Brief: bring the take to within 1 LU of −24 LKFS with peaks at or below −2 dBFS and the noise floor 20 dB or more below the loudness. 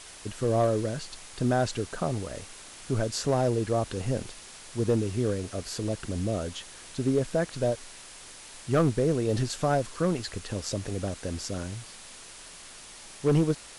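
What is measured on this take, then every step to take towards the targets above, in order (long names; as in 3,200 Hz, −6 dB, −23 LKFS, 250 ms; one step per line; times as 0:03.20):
share of clipped samples 0.5%; peaks flattened at −17.0 dBFS; background noise floor −47 dBFS; target noise floor −49 dBFS; integrated loudness −29.0 LKFS; sample peak −17.0 dBFS; target loudness −24.0 LKFS
→ clipped peaks rebuilt −17 dBFS
broadband denoise 6 dB, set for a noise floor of −47 dBFS
level +5 dB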